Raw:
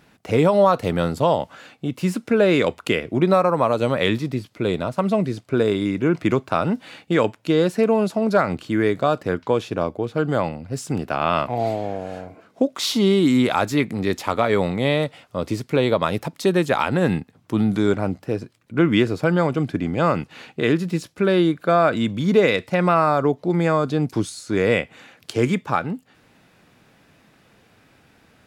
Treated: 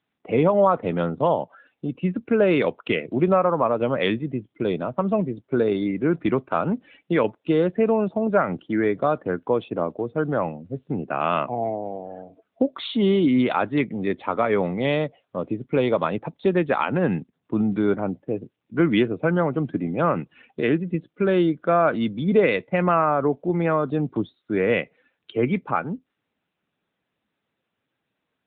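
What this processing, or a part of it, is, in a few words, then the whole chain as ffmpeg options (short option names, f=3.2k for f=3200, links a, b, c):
mobile call with aggressive noise cancelling: -af "highpass=130,afftdn=nr=21:nf=-36,volume=-1.5dB" -ar 8000 -c:a libopencore_amrnb -b:a 10200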